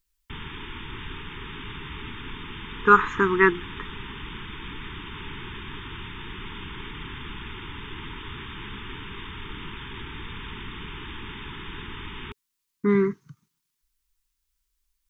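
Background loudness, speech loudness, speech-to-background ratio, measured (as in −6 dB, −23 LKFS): −37.5 LKFS, −21.0 LKFS, 16.5 dB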